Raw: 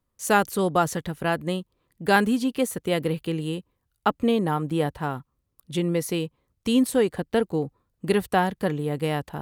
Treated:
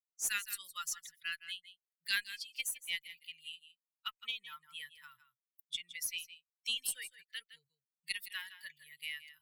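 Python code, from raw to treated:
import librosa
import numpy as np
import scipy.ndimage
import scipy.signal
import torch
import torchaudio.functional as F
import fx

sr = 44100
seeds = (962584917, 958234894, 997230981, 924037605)

y = fx.bin_expand(x, sr, power=2.0)
y = scipy.signal.sosfilt(scipy.signal.cheby2(4, 50, 780.0, 'highpass', fs=sr, output='sos'), y)
y = fx.cheby_harmonics(y, sr, harmonics=(6,), levels_db=(-35,), full_scale_db=-16.5)
y = y + 10.0 ** (-15.0 / 20.0) * np.pad(y, (int(161 * sr / 1000.0), 0))[:len(y)]
y = fx.band_squash(y, sr, depth_pct=40)
y = F.gain(torch.from_numpy(y), 2.0).numpy()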